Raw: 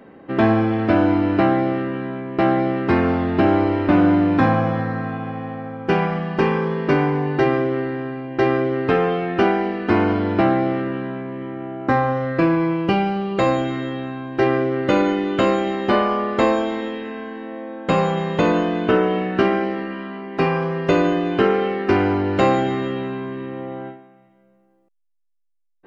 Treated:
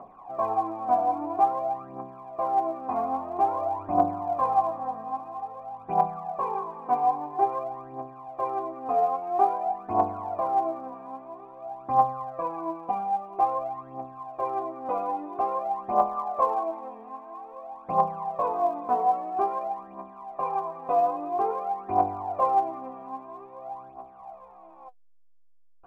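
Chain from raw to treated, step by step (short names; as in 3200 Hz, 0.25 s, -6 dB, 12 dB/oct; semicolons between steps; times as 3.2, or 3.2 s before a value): delta modulation 64 kbps, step -31.5 dBFS; vocal tract filter a; phaser 0.5 Hz, delay 4.4 ms, feedback 70%; gain +2.5 dB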